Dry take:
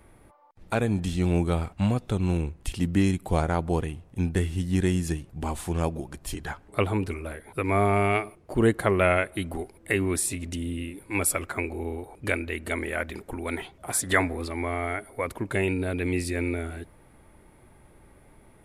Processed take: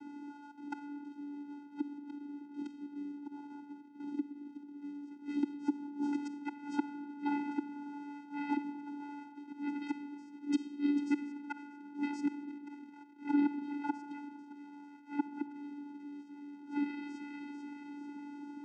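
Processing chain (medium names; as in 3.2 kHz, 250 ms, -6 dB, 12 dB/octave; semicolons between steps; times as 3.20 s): two-band feedback delay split 1.7 kHz, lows 83 ms, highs 443 ms, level -12 dB; inverted gate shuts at -22 dBFS, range -32 dB; bit crusher 10-bit; 3.72–4.81 s: level held to a coarse grid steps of 12 dB; on a send at -9.5 dB: reverberation RT60 1.7 s, pre-delay 5 ms; on the sum: vocoder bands 8, square 288 Hz; in parallel at +1.5 dB: compression, threshold -53 dBFS, peak gain reduction 19.5 dB; on the sum: tape noise reduction on one side only decoder only; trim +5 dB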